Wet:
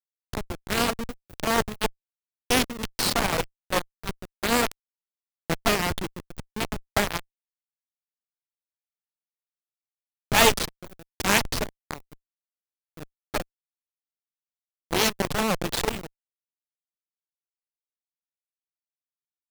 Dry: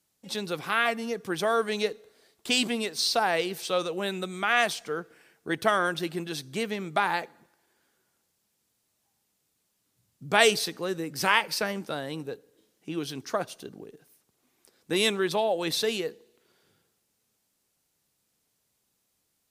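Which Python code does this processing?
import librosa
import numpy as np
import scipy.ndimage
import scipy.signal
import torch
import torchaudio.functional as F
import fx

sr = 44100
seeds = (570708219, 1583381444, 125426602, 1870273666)

y = fx.delta_hold(x, sr, step_db=-21.5)
y = fx.vibrato(y, sr, rate_hz=11.0, depth_cents=30.0)
y = fx.cheby_harmonics(y, sr, harmonics=(8,), levels_db=(-9,), full_scale_db=-3.5)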